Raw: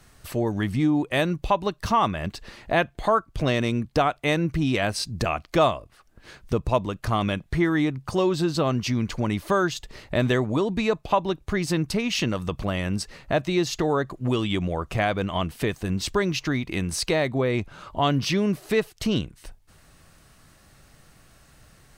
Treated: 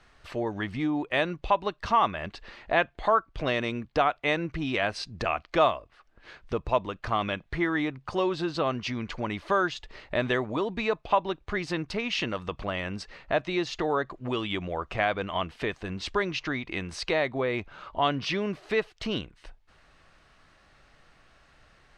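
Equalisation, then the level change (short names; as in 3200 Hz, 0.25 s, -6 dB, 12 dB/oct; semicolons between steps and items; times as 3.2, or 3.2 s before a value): LPF 3500 Hz 12 dB/oct; bell 130 Hz -8 dB 2.5 oct; low shelf 490 Hz -3 dB; 0.0 dB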